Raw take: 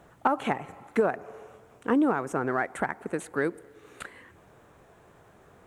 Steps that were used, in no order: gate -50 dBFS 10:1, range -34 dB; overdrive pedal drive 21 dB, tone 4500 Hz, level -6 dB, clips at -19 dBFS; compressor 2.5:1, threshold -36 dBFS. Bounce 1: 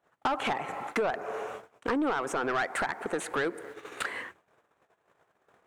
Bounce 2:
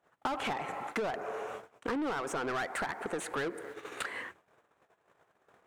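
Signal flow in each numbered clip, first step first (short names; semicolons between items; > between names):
gate > compressor > overdrive pedal; gate > overdrive pedal > compressor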